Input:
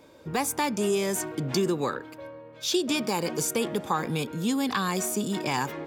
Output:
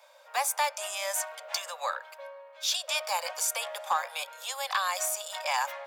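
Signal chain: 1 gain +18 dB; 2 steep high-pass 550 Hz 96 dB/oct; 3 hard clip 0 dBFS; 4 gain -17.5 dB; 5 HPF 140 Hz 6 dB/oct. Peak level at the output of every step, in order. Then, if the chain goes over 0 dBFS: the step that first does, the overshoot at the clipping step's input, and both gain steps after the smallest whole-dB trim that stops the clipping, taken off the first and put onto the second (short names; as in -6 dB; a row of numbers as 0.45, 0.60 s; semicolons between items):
+4.0, +3.5, 0.0, -17.5, -17.0 dBFS; step 1, 3.5 dB; step 1 +14 dB, step 4 -13.5 dB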